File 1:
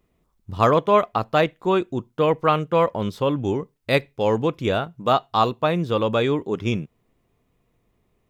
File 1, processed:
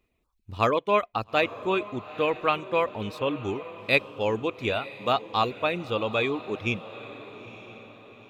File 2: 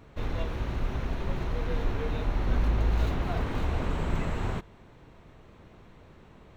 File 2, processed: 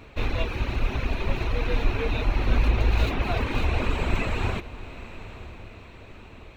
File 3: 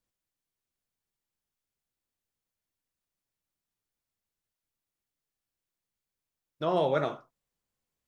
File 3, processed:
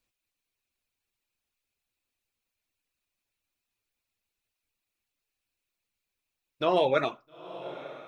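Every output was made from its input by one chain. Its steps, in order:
graphic EQ with 31 bands 160 Hz -10 dB, 2.5 kHz +11 dB, 4 kHz +5 dB; reverb removal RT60 0.66 s; echo that smears into a reverb 894 ms, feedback 45%, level -15 dB; normalise loudness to -27 LUFS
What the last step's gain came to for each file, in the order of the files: -5.5 dB, +6.0 dB, +3.5 dB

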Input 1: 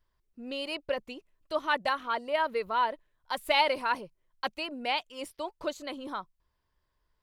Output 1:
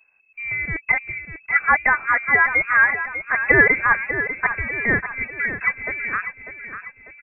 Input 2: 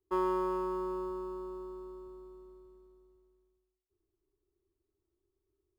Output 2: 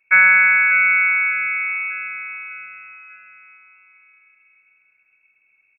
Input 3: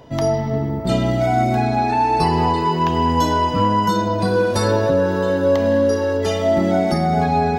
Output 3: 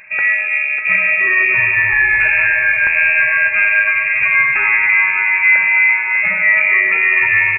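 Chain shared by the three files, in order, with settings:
frequency inversion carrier 2.6 kHz; on a send: feedback delay 596 ms, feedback 46%, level -10 dB; on the sum: peak normalisation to -1.5 dBFS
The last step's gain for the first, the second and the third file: +11.5 dB, +19.0 dB, +3.5 dB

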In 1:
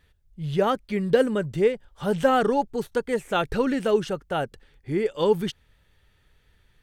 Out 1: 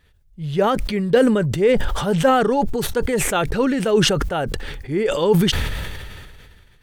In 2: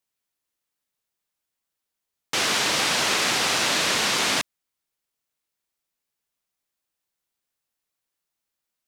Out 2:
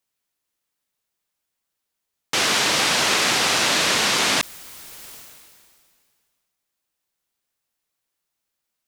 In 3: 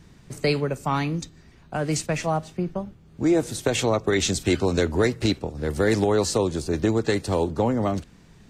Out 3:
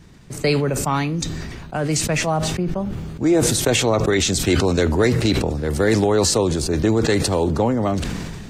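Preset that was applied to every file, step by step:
decay stretcher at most 28 dB/s; trim +3 dB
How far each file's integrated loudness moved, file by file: +5.5 LU, +3.0 LU, +4.5 LU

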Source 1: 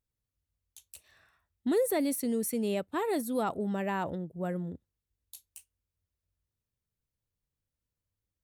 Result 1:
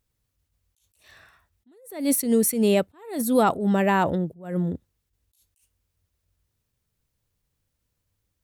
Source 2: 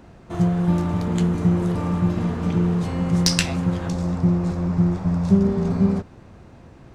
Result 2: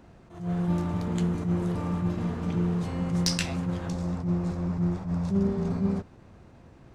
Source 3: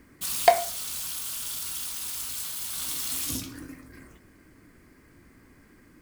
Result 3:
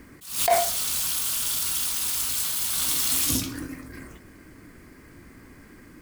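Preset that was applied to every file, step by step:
attacks held to a fixed rise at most 120 dB/s; peak normalisation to -9 dBFS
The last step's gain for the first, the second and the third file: +11.5 dB, -6.0 dB, +7.0 dB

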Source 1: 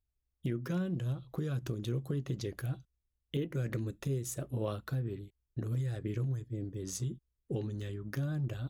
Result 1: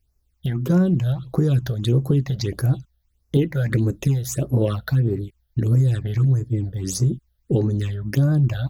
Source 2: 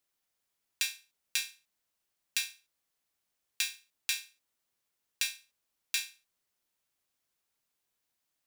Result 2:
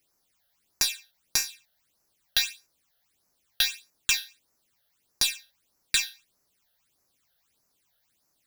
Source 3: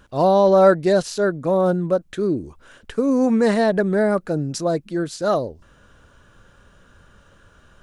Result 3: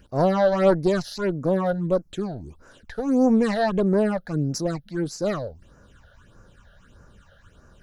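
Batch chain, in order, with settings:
single-diode clipper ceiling -17.5 dBFS; phase shifter stages 8, 1.6 Hz, lowest notch 300–3300 Hz; peak normalisation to -6 dBFS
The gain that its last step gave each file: +16.0 dB, +12.5 dB, +0.5 dB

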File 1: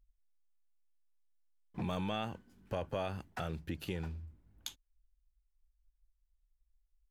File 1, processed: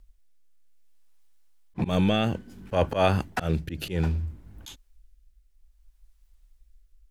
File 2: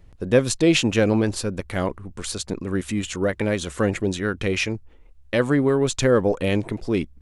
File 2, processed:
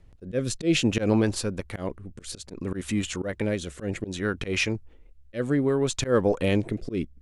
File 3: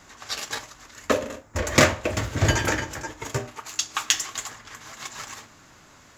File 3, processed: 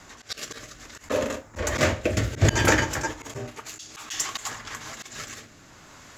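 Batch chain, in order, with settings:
rotary cabinet horn 0.6 Hz; slow attack 112 ms; normalise loudness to -27 LUFS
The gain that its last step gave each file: +18.5 dB, -1.0 dB, +6.0 dB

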